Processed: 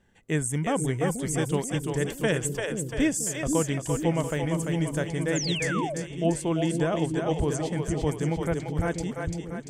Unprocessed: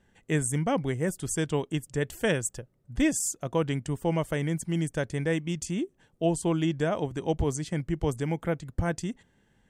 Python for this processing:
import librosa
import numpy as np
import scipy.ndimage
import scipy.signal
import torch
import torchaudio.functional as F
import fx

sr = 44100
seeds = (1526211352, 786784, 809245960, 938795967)

y = fx.echo_split(x, sr, split_hz=410.0, low_ms=484, high_ms=343, feedback_pct=52, wet_db=-4)
y = fx.spec_paint(y, sr, seeds[0], shape='fall', start_s=5.35, length_s=0.6, low_hz=530.0, high_hz=7600.0, level_db=-32.0)